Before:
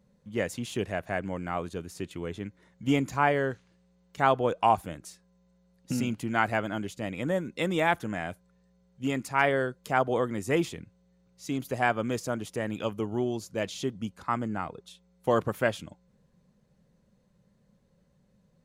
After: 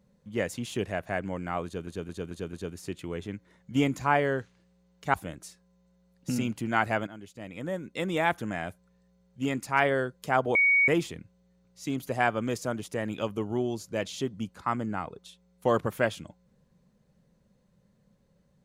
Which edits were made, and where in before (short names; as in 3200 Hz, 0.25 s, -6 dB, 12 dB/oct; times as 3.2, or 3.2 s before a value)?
1.65 stutter 0.22 s, 5 plays
4.26–4.76 cut
6.69–8.06 fade in, from -14 dB
10.17–10.5 bleep 2240 Hz -18.5 dBFS